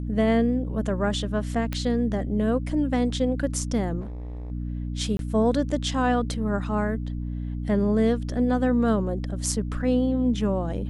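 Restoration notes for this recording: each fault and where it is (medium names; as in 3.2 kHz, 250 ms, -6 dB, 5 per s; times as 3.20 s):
hum 60 Hz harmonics 5 -30 dBFS
1.73 s: pop -14 dBFS
4.00–4.52 s: clipped -32 dBFS
5.17–5.19 s: dropout 22 ms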